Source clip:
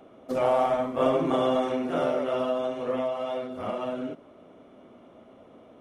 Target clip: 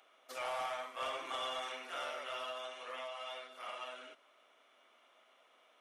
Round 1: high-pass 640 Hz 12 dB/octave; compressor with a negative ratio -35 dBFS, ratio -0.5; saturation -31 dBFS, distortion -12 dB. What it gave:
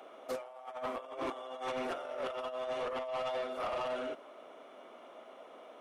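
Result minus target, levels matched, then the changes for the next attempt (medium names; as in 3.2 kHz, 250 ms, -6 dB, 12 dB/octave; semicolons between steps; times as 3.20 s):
500 Hz band +5.0 dB
change: high-pass 1.7 kHz 12 dB/octave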